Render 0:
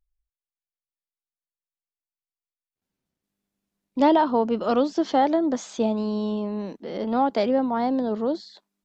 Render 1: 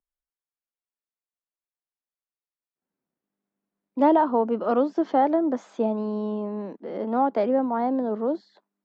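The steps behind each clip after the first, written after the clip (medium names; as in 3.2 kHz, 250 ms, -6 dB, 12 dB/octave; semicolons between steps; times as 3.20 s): three-band isolator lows -19 dB, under 170 Hz, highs -17 dB, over 2 kHz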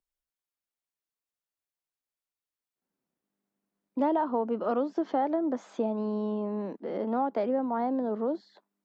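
compression 2:1, threshold -29 dBFS, peak gain reduction 9 dB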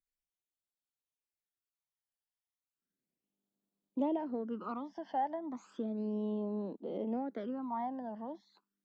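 phase shifter stages 12, 0.34 Hz, lowest notch 400–2000 Hz; trim -5 dB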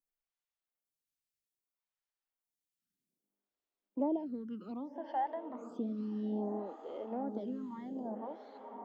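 echo that smears into a reverb 1163 ms, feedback 52%, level -9 dB; lamp-driven phase shifter 0.62 Hz; trim +1 dB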